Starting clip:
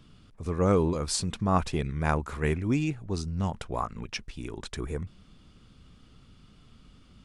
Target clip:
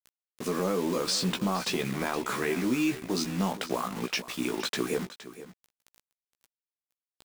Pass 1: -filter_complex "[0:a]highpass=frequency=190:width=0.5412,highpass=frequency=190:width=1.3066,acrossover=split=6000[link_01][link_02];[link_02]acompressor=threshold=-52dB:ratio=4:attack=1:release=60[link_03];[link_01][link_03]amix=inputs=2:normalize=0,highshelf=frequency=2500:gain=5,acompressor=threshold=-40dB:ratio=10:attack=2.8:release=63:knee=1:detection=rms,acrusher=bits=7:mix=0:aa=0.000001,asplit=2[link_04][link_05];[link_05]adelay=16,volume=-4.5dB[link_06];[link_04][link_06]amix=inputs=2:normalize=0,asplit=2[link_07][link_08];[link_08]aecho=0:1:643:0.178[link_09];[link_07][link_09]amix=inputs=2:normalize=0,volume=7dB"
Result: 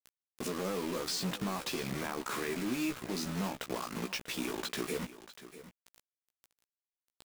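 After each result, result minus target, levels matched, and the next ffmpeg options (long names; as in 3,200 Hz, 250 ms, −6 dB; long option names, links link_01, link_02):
downward compressor: peak gain reduction +7.5 dB; echo 176 ms late
-filter_complex "[0:a]highpass=frequency=190:width=0.5412,highpass=frequency=190:width=1.3066,acrossover=split=6000[link_01][link_02];[link_02]acompressor=threshold=-52dB:ratio=4:attack=1:release=60[link_03];[link_01][link_03]amix=inputs=2:normalize=0,highshelf=frequency=2500:gain=5,acompressor=threshold=-31.5dB:ratio=10:attack=2.8:release=63:knee=1:detection=rms,acrusher=bits=7:mix=0:aa=0.000001,asplit=2[link_04][link_05];[link_05]adelay=16,volume=-4.5dB[link_06];[link_04][link_06]amix=inputs=2:normalize=0,asplit=2[link_07][link_08];[link_08]aecho=0:1:643:0.178[link_09];[link_07][link_09]amix=inputs=2:normalize=0,volume=7dB"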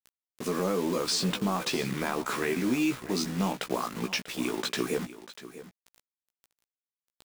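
echo 176 ms late
-filter_complex "[0:a]highpass=frequency=190:width=0.5412,highpass=frequency=190:width=1.3066,acrossover=split=6000[link_01][link_02];[link_02]acompressor=threshold=-52dB:ratio=4:attack=1:release=60[link_03];[link_01][link_03]amix=inputs=2:normalize=0,highshelf=frequency=2500:gain=5,acompressor=threshold=-31.5dB:ratio=10:attack=2.8:release=63:knee=1:detection=rms,acrusher=bits=7:mix=0:aa=0.000001,asplit=2[link_04][link_05];[link_05]adelay=16,volume=-4.5dB[link_06];[link_04][link_06]amix=inputs=2:normalize=0,asplit=2[link_07][link_08];[link_08]aecho=0:1:467:0.178[link_09];[link_07][link_09]amix=inputs=2:normalize=0,volume=7dB"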